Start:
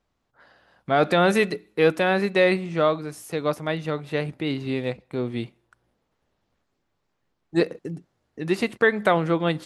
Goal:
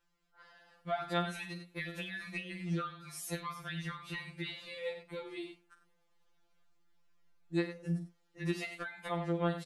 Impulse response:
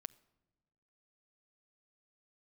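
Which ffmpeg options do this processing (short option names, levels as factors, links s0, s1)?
-af "equalizer=f=320:w=0.41:g=-8,aecho=1:1:47|92:0.316|0.237,acompressor=threshold=0.02:ratio=10,afftfilt=real='re*2.83*eq(mod(b,8),0)':imag='im*2.83*eq(mod(b,8),0)':win_size=2048:overlap=0.75,volume=1.12"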